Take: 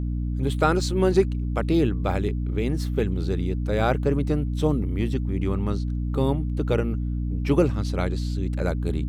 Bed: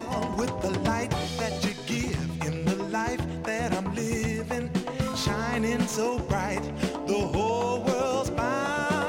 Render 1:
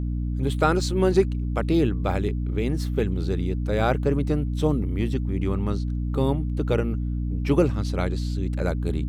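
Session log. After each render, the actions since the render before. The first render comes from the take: no audible change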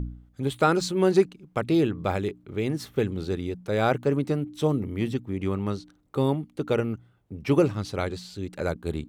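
de-hum 60 Hz, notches 5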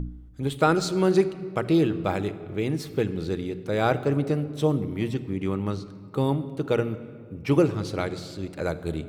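simulated room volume 3700 m³, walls mixed, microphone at 0.62 m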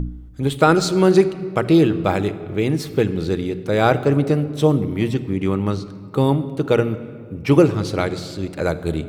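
trim +7 dB; peak limiter -2 dBFS, peak gain reduction 2 dB

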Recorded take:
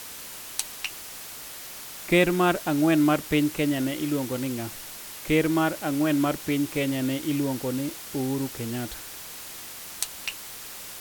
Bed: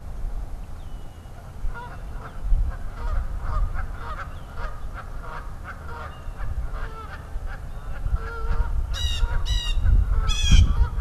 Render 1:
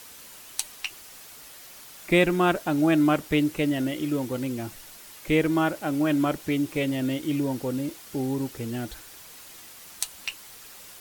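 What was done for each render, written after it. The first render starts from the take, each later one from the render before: noise reduction 7 dB, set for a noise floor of -40 dBFS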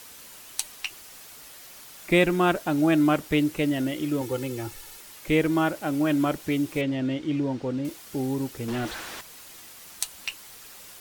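4.21–5.01 s: comb 2.3 ms; 6.81–7.85 s: distance through air 130 m; 8.68–9.21 s: overdrive pedal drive 33 dB, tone 1.7 kHz, clips at -21.5 dBFS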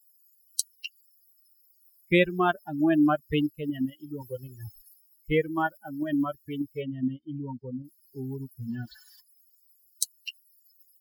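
expander on every frequency bin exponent 3; in parallel at -3 dB: level held to a coarse grid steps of 15 dB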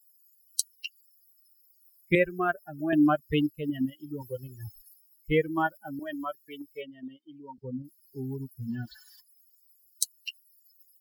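2.15–2.93 s: static phaser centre 930 Hz, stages 6; 5.99–7.58 s: high-pass 540 Hz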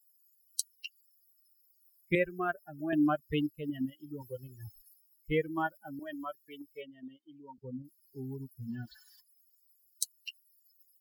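trim -5.5 dB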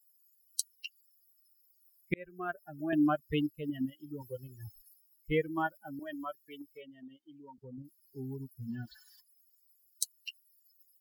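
2.14–2.69 s: fade in; 6.74–7.78 s: compression 2:1, threshold -48 dBFS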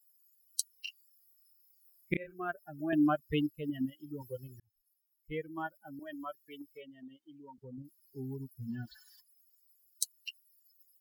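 0.71–2.42 s: doubling 30 ms -4.5 dB; 4.60–6.68 s: fade in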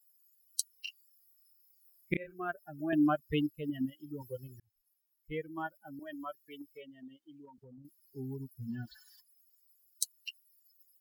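7.45–7.85 s: compression 3:1, threshold -53 dBFS

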